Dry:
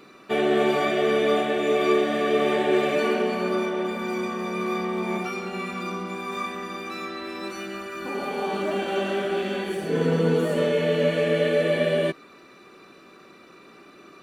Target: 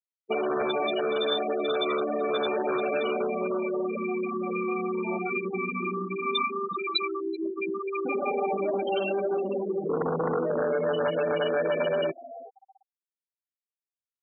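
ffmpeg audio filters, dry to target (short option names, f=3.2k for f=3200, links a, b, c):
-filter_complex "[0:a]afftfilt=real='re*gte(hypot(re,im),0.1)':imag='im*gte(hypot(re,im),0.1)':win_size=1024:overlap=0.75,acrossover=split=970[a][b];[a]aeval=exprs='0.299*sin(PI/2*2.51*val(0)/0.299)':c=same[c];[b]aexciter=amount=13.5:drive=8.7:freq=3.1k[d];[c][d]amix=inputs=2:normalize=0,dynaudnorm=f=770:g=9:m=13.5dB,asplit=3[e][f][g];[f]adelay=380,afreqshift=95,volume=-24dB[h];[g]adelay=760,afreqshift=190,volume=-33.6dB[i];[e][h][i]amix=inputs=3:normalize=0,afftfilt=real='re*gte(hypot(re,im),0.0891)':imag='im*gte(hypot(re,im),0.0891)':win_size=1024:overlap=0.75,acompressor=threshold=-17dB:ratio=6,highpass=f=580:p=1,volume=-4dB"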